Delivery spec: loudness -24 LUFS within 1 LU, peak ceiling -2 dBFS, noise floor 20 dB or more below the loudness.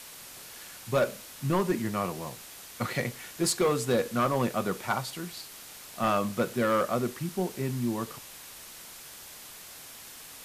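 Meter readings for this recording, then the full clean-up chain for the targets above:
clipped samples 0.7%; clipping level -19.0 dBFS; noise floor -47 dBFS; noise floor target -50 dBFS; loudness -29.5 LUFS; peak level -19.0 dBFS; loudness target -24.0 LUFS
-> clip repair -19 dBFS; noise reduction 6 dB, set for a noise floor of -47 dBFS; trim +5.5 dB

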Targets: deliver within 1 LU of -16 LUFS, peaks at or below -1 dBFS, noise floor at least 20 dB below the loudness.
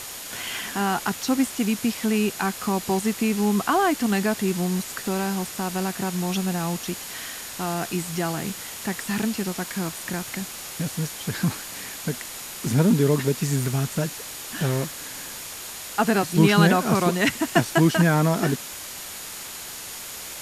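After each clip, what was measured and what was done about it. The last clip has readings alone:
steady tone 6.8 kHz; tone level -45 dBFS; noise floor -37 dBFS; noise floor target -45 dBFS; loudness -24.5 LUFS; peak level -4.0 dBFS; loudness target -16.0 LUFS
-> band-stop 6.8 kHz, Q 30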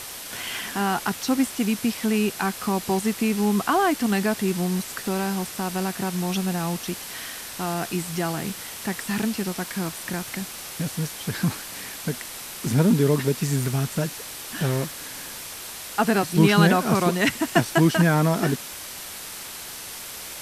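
steady tone not found; noise floor -37 dBFS; noise floor target -45 dBFS
-> noise reduction 8 dB, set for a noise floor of -37 dBFS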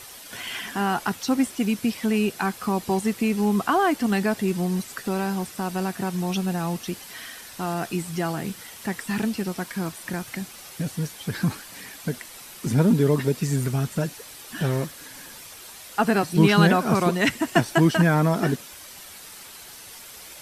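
noise floor -43 dBFS; noise floor target -45 dBFS
-> noise reduction 6 dB, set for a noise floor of -43 dBFS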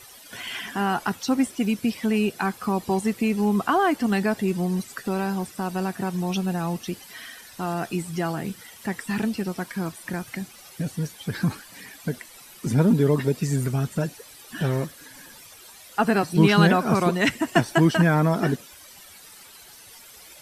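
noise floor -47 dBFS; loudness -24.5 LUFS; peak level -4.5 dBFS; loudness target -16.0 LUFS
-> trim +8.5 dB; peak limiter -1 dBFS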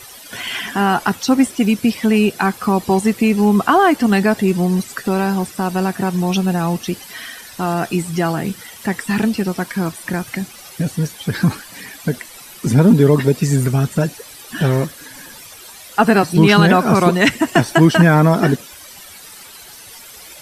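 loudness -16.5 LUFS; peak level -1.0 dBFS; noise floor -39 dBFS

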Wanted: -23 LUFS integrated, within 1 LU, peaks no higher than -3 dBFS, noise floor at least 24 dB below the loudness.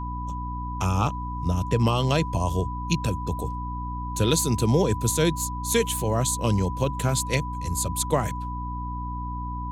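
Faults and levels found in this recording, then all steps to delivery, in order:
hum 60 Hz; highest harmonic 300 Hz; hum level -30 dBFS; steady tone 990 Hz; tone level -33 dBFS; loudness -25.5 LUFS; peak level -8.5 dBFS; loudness target -23.0 LUFS
-> hum notches 60/120/180/240/300 Hz; band-stop 990 Hz, Q 30; trim +2.5 dB

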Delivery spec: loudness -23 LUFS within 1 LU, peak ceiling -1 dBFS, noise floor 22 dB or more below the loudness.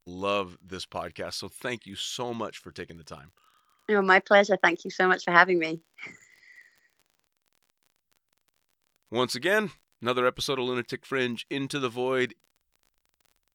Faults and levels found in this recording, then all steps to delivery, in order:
tick rate 41 per s; loudness -26.0 LUFS; peak level -2.0 dBFS; loudness target -23.0 LUFS
-> de-click; trim +3 dB; peak limiter -1 dBFS

